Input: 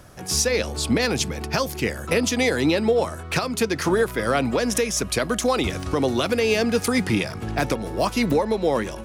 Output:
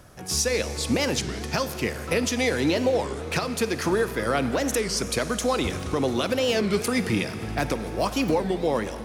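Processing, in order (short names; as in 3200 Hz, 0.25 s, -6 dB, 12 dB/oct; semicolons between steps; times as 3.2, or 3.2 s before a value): Schroeder reverb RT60 3.6 s, DRR 10.5 dB; record warp 33 1/3 rpm, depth 250 cents; gain -3 dB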